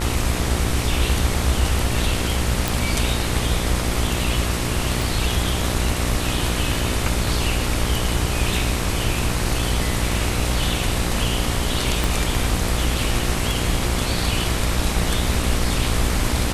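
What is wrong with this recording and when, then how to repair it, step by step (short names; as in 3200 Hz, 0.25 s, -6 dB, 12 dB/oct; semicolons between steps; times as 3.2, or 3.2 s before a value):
buzz 60 Hz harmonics 23 -25 dBFS
2.68 pop
5.02 pop
12.04 pop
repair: de-click; de-hum 60 Hz, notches 23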